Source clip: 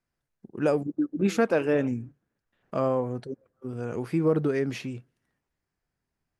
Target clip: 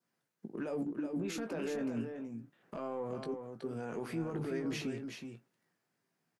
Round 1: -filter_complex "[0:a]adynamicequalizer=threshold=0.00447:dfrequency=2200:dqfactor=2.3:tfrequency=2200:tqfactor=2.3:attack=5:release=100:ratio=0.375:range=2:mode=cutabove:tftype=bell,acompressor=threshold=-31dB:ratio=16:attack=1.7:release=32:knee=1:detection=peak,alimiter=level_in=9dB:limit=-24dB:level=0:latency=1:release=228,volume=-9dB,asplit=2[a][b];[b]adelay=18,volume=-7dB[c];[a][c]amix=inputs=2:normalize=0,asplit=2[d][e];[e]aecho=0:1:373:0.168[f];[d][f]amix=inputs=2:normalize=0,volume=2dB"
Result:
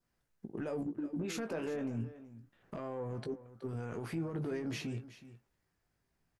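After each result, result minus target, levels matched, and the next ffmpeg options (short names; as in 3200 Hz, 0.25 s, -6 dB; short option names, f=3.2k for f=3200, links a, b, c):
echo-to-direct -9 dB; 125 Hz band +4.0 dB
-filter_complex "[0:a]adynamicequalizer=threshold=0.00447:dfrequency=2200:dqfactor=2.3:tfrequency=2200:tqfactor=2.3:attack=5:release=100:ratio=0.375:range=2:mode=cutabove:tftype=bell,acompressor=threshold=-31dB:ratio=16:attack=1.7:release=32:knee=1:detection=peak,alimiter=level_in=9dB:limit=-24dB:level=0:latency=1:release=228,volume=-9dB,asplit=2[a][b];[b]adelay=18,volume=-7dB[c];[a][c]amix=inputs=2:normalize=0,asplit=2[d][e];[e]aecho=0:1:373:0.473[f];[d][f]amix=inputs=2:normalize=0,volume=2dB"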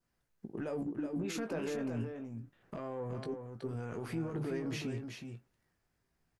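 125 Hz band +4.5 dB
-filter_complex "[0:a]adynamicequalizer=threshold=0.00447:dfrequency=2200:dqfactor=2.3:tfrequency=2200:tqfactor=2.3:attack=5:release=100:ratio=0.375:range=2:mode=cutabove:tftype=bell,highpass=f=150:w=0.5412,highpass=f=150:w=1.3066,acompressor=threshold=-31dB:ratio=16:attack=1.7:release=32:knee=1:detection=peak,alimiter=level_in=9dB:limit=-24dB:level=0:latency=1:release=228,volume=-9dB,asplit=2[a][b];[b]adelay=18,volume=-7dB[c];[a][c]amix=inputs=2:normalize=0,asplit=2[d][e];[e]aecho=0:1:373:0.473[f];[d][f]amix=inputs=2:normalize=0,volume=2dB"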